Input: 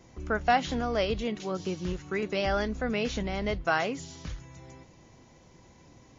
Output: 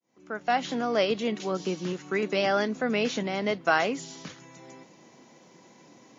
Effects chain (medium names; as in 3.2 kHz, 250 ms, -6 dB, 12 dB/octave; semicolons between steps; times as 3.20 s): fade-in on the opening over 0.96 s; high-pass 180 Hz 24 dB/octave; trim +3.5 dB